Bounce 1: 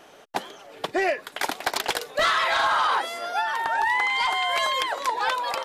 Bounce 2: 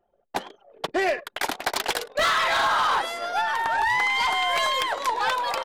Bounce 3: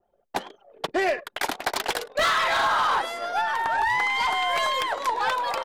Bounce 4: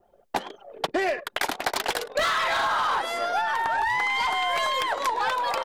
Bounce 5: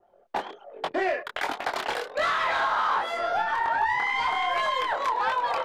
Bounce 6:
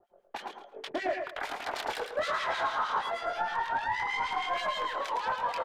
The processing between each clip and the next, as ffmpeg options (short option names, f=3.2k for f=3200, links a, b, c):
-af "aecho=1:1:105:0.106,aeval=exprs='0.178*(cos(1*acos(clip(val(0)/0.178,-1,1)))-cos(1*PI/2))+0.0178*(cos(2*acos(clip(val(0)/0.178,-1,1)))-cos(2*PI/2))+0.0112*(cos(4*acos(clip(val(0)/0.178,-1,1)))-cos(4*PI/2))+0.0158*(cos(5*acos(clip(val(0)/0.178,-1,1)))-cos(5*PI/2))+0.00794*(cos(7*acos(clip(val(0)/0.178,-1,1)))-cos(7*PI/2))':c=same,anlmdn=1.58"
-af "adynamicequalizer=threshold=0.0158:dfrequency=2000:dqfactor=0.7:tfrequency=2000:tqfactor=0.7:attack=5:release=100:ratio=0.375:range=1.5:mode=cutabove:tftype=highshelf"
-af "acompressor=threshold=-33dB:ratio=4,volume=8.5dB"
-filter_complex "[0:a]asplit=2[a][b];[b]highpass=f=720:p=1,volume=11dB,asoftclip=type=tanh:threshold=-10.5dB[c];[a][c]amix=inputs=2:normalize=0,lowpass=f=1.6k:p=1,volume=-6dB,flanger=delay=20:depth=7.8:speed=1.3"
-filter_complex "[0:a]asoftclip=type=tanh:threshold=-20dB,acrossover=split=1800[a][b];[a]aeval=exprs='val(0)*(1-1/2+1/2*cos(2*PI*6.4*n/s))':c=same[c];[b]aeval=exprs='val(0)*(1-1/2-1/2*cos(2*PI*6.4*n/s))':c=same[d];[c][d]amix=inputs=2:normalize=0,aecho=1:1:110|220|330:0.473|0.104|0.0229"